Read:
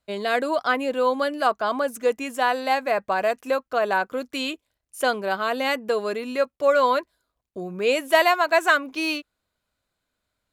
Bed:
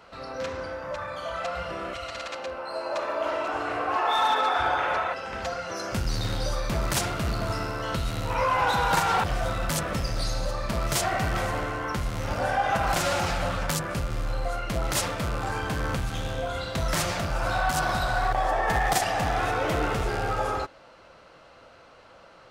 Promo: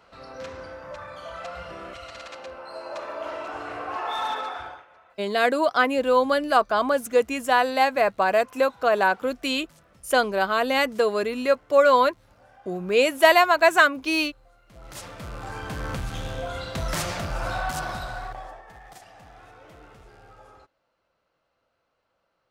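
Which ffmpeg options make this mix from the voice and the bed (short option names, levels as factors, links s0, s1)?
-filter_complex "[0:a]adelay=5100,volume=1.26[s0];[1:a]volume=12.6,afade=t=out:st=4.31:d=0.54:silence=0.0668344,afade=t=in:st=14.66:d=1.42:silence=0.0446684,afade=t=out:st=17.41:d=1.23:silence=0.0841395[s1];[s0][s1]amix=inputs=2:normalize=0"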